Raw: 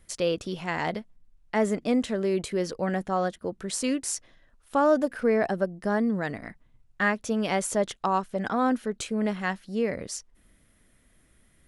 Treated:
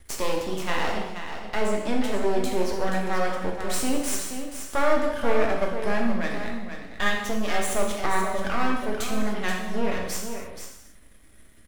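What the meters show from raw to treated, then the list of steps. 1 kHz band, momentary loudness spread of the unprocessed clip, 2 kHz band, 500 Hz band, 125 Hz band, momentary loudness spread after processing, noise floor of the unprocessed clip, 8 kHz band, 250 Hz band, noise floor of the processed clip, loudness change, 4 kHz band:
+1.5 dB, 8 LU, +3.0 dB, 0.0 dB, -0.5 dB, 9 LU, -63 dBFS, +2.5 dB, -1.5 dB, -50 dBFS, 0.0 dB, +4.5 dB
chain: in parallel at +2 dB: compression, threshold -35 dBFS, peak gain reduction 17.5 dB; on the sum: half-wave rectifier; delay 479 ms -8.5 dB; gated-style reverb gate 320 ms falling, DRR -0.5 dB

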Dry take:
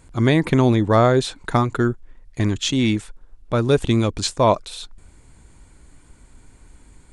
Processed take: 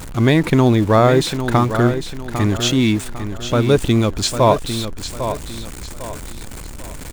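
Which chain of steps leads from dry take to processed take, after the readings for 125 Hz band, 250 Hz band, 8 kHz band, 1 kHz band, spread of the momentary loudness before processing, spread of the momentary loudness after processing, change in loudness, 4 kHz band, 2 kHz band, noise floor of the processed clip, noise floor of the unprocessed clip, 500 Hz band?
+3.5 dB, +3.5 dB, +5.5 dB, +3.0 dB, 10 LU, 19 LU, +2.5 dB, +4.0 dB, +3.5 dB, -32 dBFS, -50 dBFS, +3.0 dB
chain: jump at every zero crossing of -29 dBFS; feedback delay 801 ms, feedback 36%, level -9.5 dB; trim +2 dB

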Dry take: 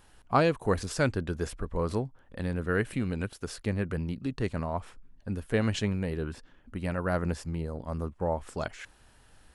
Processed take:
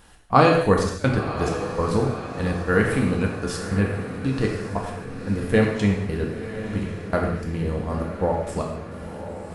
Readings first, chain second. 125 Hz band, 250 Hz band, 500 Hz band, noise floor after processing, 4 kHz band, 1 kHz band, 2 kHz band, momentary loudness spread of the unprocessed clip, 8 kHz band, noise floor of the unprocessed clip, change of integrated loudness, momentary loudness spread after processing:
+7.0 dB, +8.5 dB, +8.5 dB, -36 dBFS, +6.0 dB, +9.5 dB, +8.0 dB, 10 LU, +5.0 dB, -60 dBFS, +8.0 dB, 11 LU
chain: trance gate "x.xxxx.x.x..xx.." 101 bpm -24 dB; on a send: echo that smears into a reverb 1028 ms, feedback 60%, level -11 dB; on the sum: gated-style reverb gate 270 ms falling, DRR -0.5 dB; trim +6 dB

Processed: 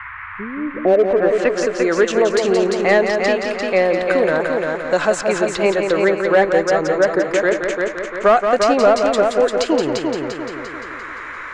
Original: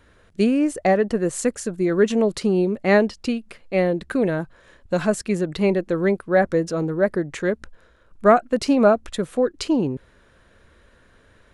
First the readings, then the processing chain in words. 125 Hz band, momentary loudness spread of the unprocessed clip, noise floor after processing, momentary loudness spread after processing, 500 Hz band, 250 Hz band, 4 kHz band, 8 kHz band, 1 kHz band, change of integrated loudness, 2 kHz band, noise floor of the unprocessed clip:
-4.5 dB, 10 LU, -32 dBFS, 13 LU, +6.0 dB, -1.0 dB, +7.5 dB, +3.5 dB, +6.0 dB, +4.5 dB, +8.5 dB, -56 dBFS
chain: peaking EQ 190 Hz -10.5 dB 1.3 oct; low-pass sweep 100 Hz -> 7.1 kHz, 0.51–1.69 s; vibrato 5.5 Hz 33 cents; band noise 1–2.2 kHz -50 dBFS; in parallel at -7 dB: wavefolder -13.5 dBFS; on the sum: overdrive pedal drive 10 dB, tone 1.8 kHz, clips at -2.5 dBFS; on a send: multi-head delay 173 ms, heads first and second, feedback 45%, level -7 dB; on the sum: three bands compressed up and down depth 40%; trim +2 dB

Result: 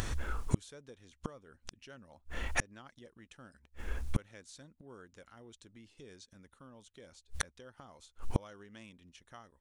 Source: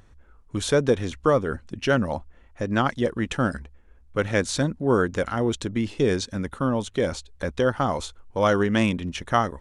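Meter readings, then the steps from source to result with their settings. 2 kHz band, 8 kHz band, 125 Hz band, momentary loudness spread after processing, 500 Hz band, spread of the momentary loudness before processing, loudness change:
-15.0 dB, -11.0 dB, -14.0 dB, 20 LU, -26.5 dB, 10 LU, -16.5 dB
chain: treble shelf 2.3 kHz +10 dB; compression 1.5:1, threshold -41 dBFS, peak gain reduction 10 dB; inverted gate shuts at -32 dBFS, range -41 dB; trim +17 dB

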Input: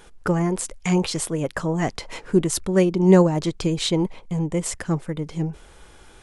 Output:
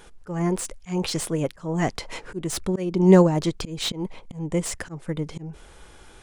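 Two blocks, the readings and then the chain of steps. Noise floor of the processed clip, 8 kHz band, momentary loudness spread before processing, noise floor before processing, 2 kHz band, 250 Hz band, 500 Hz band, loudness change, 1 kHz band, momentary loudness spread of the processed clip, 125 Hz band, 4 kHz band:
-49 dBFS, -3.5 dB, 12 LU, -49 dBFS, -3.5 dB, -2.5 dB, -2.0 dB, -2.0 dB, -1.5 dB, 18 LU, -2.5 dB, -1.5 dB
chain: slow attack 221 ms; slew-rate limiter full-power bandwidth 320 Hz

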